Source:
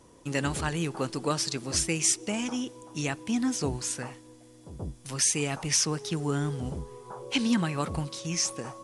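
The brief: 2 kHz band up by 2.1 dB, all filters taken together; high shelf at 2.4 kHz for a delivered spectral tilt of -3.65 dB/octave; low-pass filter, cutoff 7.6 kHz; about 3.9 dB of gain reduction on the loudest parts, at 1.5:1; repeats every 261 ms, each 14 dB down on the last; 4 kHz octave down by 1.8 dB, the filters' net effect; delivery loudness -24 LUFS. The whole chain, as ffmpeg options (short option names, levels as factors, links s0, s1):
-af "lowpass=7600,equalizer=f=2000:t=o:g=3,highshelf=f=2400:g=3.5,equalizer=f=4000:t=o:g=-7,acompressor=threshold=0.0251:ratio=1.5,aecho=1:1:261|522:0.2|0.0399,volume=2.66"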